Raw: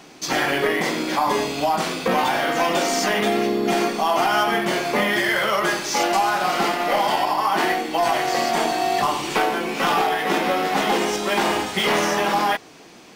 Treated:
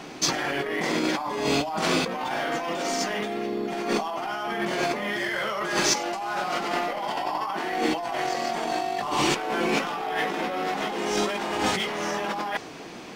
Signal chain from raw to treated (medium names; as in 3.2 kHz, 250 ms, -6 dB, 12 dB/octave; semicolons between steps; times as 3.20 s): treble shelf 4.9 kHz -8.5 dB; compressor with a negative ratio -28 dBFS, ratio -1; dynamic bell 6.4 kHz, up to +4 dB, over -43 dBFS, Q 0.95